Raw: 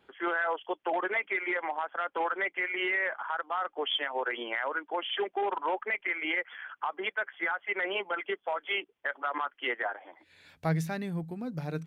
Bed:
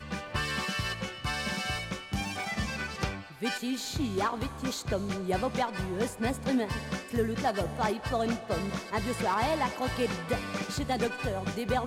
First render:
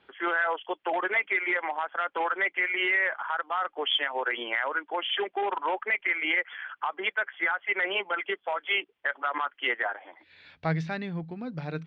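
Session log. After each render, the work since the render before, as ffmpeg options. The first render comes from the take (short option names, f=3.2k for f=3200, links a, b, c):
-af "lowpass=f=4.6k:w=0.5412,lowpass=f=4.6k:w=1.3066,equalizer=f=2.6k:t=o:w=2.7:g=5"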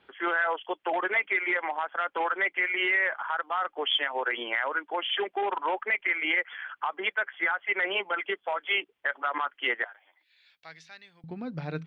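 -filter_complex "[0:a]asettb=1/sr,asplit=3[a][b][c];[a]atrim=end=9.844[d];[b]atrim=start=9.84:end=11.24,asetpts=PTS-STARTPTS,afade=t=in:d=0.004:c=qsin,afade=t=out:st=1.396:d=0.004:c=qsin,aderivative[e];[c]atrim=start=11.236[f];[d][e]acrossfade=d=0.004:c1=hsin:c2=qsin[g];[g][f]acrossfade=d=0.004:c1=qsin:c2=hsin"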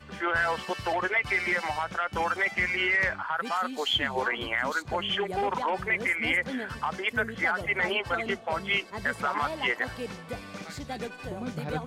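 -filter_complex "[1:a]volume=-6.5dB[a];[0:a][a]amix=inputs=2:normalize=0"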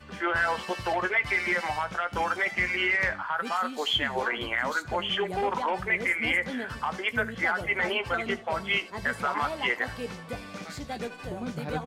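-filter_complex "[0:a]asplit=2[a][b];[b]adelay=17,volume=-11.5dB[c];[a][c]amix=inputs=2:normalize=0,aecho=1:1:77:0.0944"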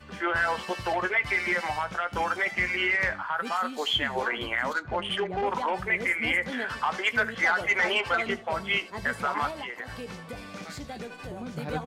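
-filter_complex "[0:a]asplit=3[a][b][c];[a]afade=t=out:st=4.72:d=0.02[d];[b]adynamicsmooth=sensitivity=2.5:basefreq=2.3k,afade=t=in:st=4.72:d=0.02,afade=t=out:st=5.45:d=0.02[e];[c]afade=t=in:st=5.45:d=0.02[f];[d][e][f]amix=inputs=3:normalize=0,asettb=1/sr,asplit=3[g][h][i];[g]atrim=end=6.524[j];[h]atrim=start=6.52:end=8.28,asetpts=PTS-STARTPTS,afade=t=in:d=0.004:c=qsin,afade=t=out:st=1.756:d=0.004:c=qsin,asplit=2[k][l];[l]highpass=f=720:p=1,volume=10dB,asoftclip=type=tanh:threshold=-14.5dB[m];[k][m]amix=inputs=2:normalize=0,lowpass=f=5.7k:p=1,volume=-6dB[n];[i]atrim=start=8.276[o];[j][n]acrossfade=d=0.004:c1=hsin:c2=qsin[p];[p][o]acrossfade=d=0.004:c1=qsin:c2=hsin,asettb=1/sr,asplit=3[q][r][s];[q]atrim=end=9.504[t];[r]atrim=start=9.5:end=11.53,asetpts=PTS-STARTPTS,afade=t=in:d=0.004:c=qsin,afade=t=out:st=2.026:d=0.004:c=qsin,acompressor=threshold=-33dB:ratio=6:attack=3.2:release=140:knee=1:detection=peak[u];[s]atrim=start=11.526[v];[t][u]acrossfade=d=0.004:c1=hsin:c2=qsin[w];[w][v]acrossfade=d=0.004:c1=qsin:c2=hsin"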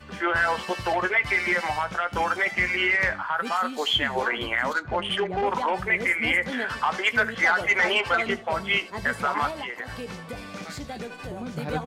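-af "volume=3dB"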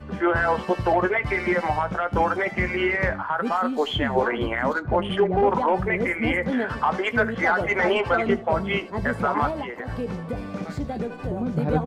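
-af "tiltshelf=f=1.3k:g=9"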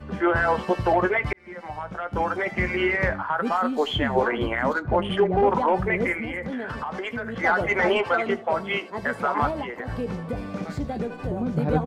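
-filter_complex "[0:a]asplit=3[a][b][c];[a]afade=t=out:st=6.19:d=0.02[d];[b]acompressor=threshold=-27dB:ratio=6:attack=3.2:release=140:knee=1:detection=peak,afade=t=in:st=6.19:d=0.02,afade=t=out:st=7.43:d=0.02[e];[c]afade=t=in:st=7.43:d=0.02[f];[d][e][f]amix=inputs=3:normalize=0,asettb=1/sr,asplit=3[g][h][i];[g]atrim=end=8.034[j];[h]atrim=start=8.03:end=9.39,asetpts=PTS-STARTPTS,afade=t=in:d=0.004:c=qsin,afade=t=out:st=1.356:d=0.004:c=qsin,highpass=f=390:p=1[k];[i]atrim=start=9.386[l];[j][k]acrossfade=d=0.004:c1=hsin:c2=qsin[m];[m][l]acrossfade=d=0.004:c1=qsin:c2=hsin,asplit=2[n][o];[n]atrim=end=1.33,asetpts=PTS-STARTPTS,afade=t=out:st=1.326:d=0.004:c=hsin[p];[o]atrim=start=1.33,asetpts=PTS-STARTPTS,afade=t=in:d=1.36[q];[p][q]concat=n=2:v=0:a=1"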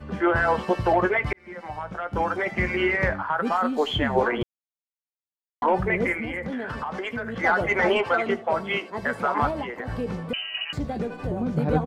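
-filter_complex "[0:a]asettb=1/sr,asplit=3[a][b][c];[a]atrim=end=10.334[d];[b]atrim=start=10.33:end=10.73,asetpts=PTS-STARTPTS,afade=t=in:d=0.004:c=qsin,afade=t=out:st=0.396:d=0.004:c=qsin,lowpass=f=2.6k:t=q:w=0.5098,lowpass=f=2.6k:t=q:w=0.6013,lowpass=f=2.6k:t=q:w=0.9,lowpass=f=2.6k:t=q:w=2.563,afreqshift=-3100[e];[c]atrim=start=10.726[f];[d][e]acrossfade=d=0.004:c1=hsin:c2=qsin[g];[g][f]acrossfade=d=0.004:c1=qsin:c2=hsin,asplit=3[h][i][j];[h]atrim=end=4.43,asetpts=PTS-STARTPTS,afade=t=out:st=4.426:d=0.004:c=hsin[k];[i]atrim=start=4.43:end=5.62,asetpts=PTS-STARTPTS,volume=0[l];[j]atrim=start=5.62,asetpts=PTS-STARTPTS,afade=t=in:d=0.004:c=hsin[m];[k][l][m]concat=n=3:v=0:a=1"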